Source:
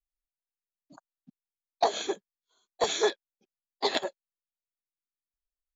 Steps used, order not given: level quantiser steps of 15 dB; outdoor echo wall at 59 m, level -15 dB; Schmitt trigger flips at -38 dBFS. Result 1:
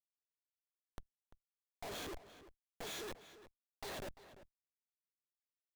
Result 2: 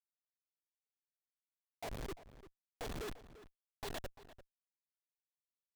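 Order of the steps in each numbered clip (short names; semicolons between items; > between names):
Schmitt trigger > outdoor echo > level quantiser; level quantiser > Schmitt trigger > outdoor echo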